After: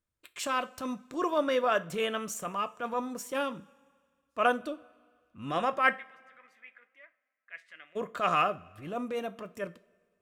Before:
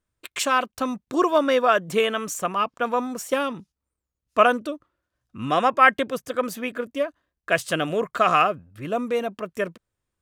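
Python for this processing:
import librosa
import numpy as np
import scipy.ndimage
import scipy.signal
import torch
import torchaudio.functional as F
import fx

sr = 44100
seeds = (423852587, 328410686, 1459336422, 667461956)

y = fx.transient(x, sr, attack_db=-8, sustain_db=-2)
y = fx.bandpass_q(y, sr, hz=2000.0, q=8.4, at=(5.95, 7.95), fade=0.02)
y = fx.rev_double_slope(y, sr, seeds[0], early_s=0.29, late_s=2.0, knee_db=-21, drr_db=11.0)
y = y * librosa.db_to_amplitude(-6.5)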